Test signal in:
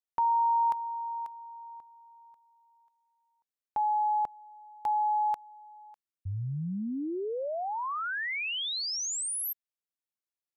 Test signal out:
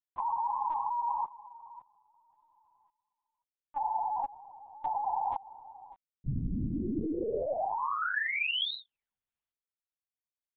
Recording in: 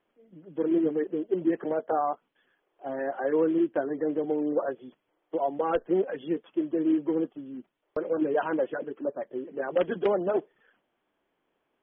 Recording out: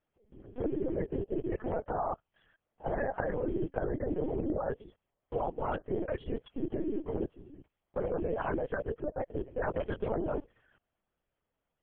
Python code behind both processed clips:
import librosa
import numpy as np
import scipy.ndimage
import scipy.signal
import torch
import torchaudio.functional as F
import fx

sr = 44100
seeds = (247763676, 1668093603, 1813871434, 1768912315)

y = fx.level_steps(x, sr, step_db=18)
y = fx.whisperise(y, sr, seeds[0])
y = fx.lpc_vocoder(y, sr, seeds[1], excitation='pitch_kept', order=10)
y = F.gain(torch.from_numpy(y), 4.0).numpy()